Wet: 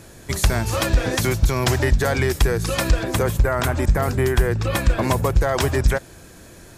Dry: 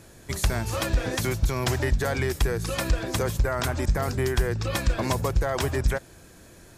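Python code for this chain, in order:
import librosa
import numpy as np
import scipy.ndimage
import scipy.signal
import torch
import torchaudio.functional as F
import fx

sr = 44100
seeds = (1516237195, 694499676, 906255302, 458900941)

y = fx.peak_eq(x, sr, hz=5200.0, db=-6.0, octaves=1.1, at=(3.04, 5.37))
y = y * 10.0 ** (6.0 / 20.0)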